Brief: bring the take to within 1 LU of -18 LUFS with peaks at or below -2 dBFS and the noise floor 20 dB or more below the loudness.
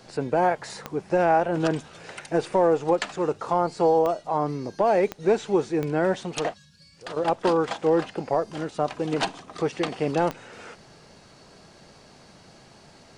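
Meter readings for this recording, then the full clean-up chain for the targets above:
clicks found 5; loudness -25.0 LUFS; peak level -10.5 dBFS; loudness target -18.0 LUFS
-> de-click; trim +7 dB

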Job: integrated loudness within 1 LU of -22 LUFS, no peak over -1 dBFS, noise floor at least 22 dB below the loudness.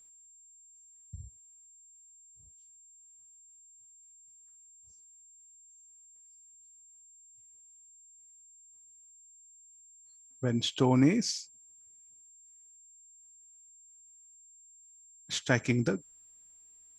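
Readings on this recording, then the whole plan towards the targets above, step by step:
steady tone 7.4 kHz; tone level -55 dBFS; loudness -29.0 LUFS; peak level -9.5 dBFS; loudness target -22.0 LUFS
-> band-stop 7.4 kHz, Q 30; trim +7 dB

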